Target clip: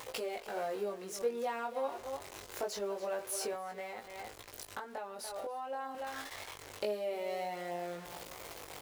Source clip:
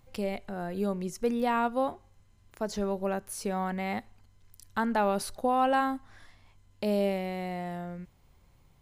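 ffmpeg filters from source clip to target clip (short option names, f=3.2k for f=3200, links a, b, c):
-filter_complex "[0:a]aeval=exprs='val(0)+0.5*0.0112*sgn(val(0))':c=same,aecho=1:1:287:0.188,acompressor=threshold=-36dB:ratio=5,highpass=f=99:p=1,lowshelf=f=300:t=q:w=1.5:g=-12,asettb=1/sr,asplit=3[a][b][c];[a]atrim=end=3.534[d];[b]atrim=start=3.53:end=5.95,asetpts=PTS-STARTPTS,afade=t=in:d=0.004:c=qsin,afade=t=out:st=2.416:d=0.004:c=qsin,acrossover=split=130[e][f];[f]acompressor=threshold=-41dB:ratio=4[g];[e][g]amix=inputs=2:normalize=0[h];[c]atrim=start=5.946[i];[d][h]acrossfade=d=0.004:c1=hsin:c2=qsin[j];[j][i]acrossfade=d=0.004:c1=qsin:c2=hsin,flanger=delay=17.5:depth=4.8:speed=0.26,volume=5dB"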